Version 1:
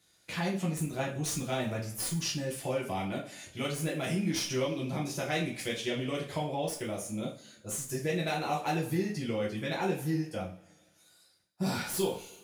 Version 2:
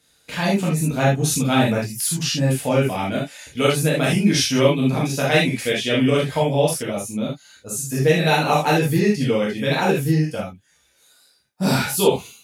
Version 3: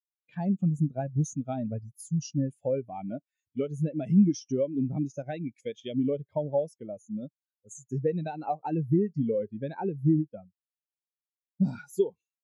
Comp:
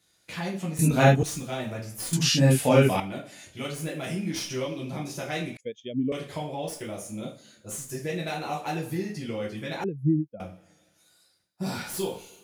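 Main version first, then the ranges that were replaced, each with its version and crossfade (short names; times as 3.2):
1
0.79–1.23 from 2
2.13–3 from 2
5.57–6.12 from 3
9.84–10.4 from 3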